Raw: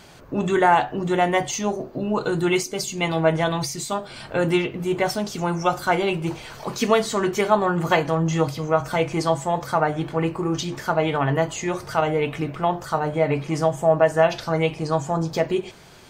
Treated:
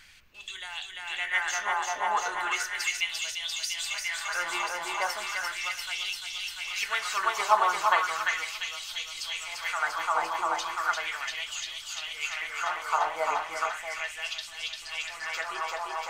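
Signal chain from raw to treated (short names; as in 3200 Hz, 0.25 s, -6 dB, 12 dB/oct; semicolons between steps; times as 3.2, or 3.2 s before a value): thinning echo 0.345 s, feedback 83%, high-pass 460 Hz, level -3 dB; LFO high-pass sine 0.36 Hz 950–3400 Hz; added noise brown -57 dBFS; gain -7 dB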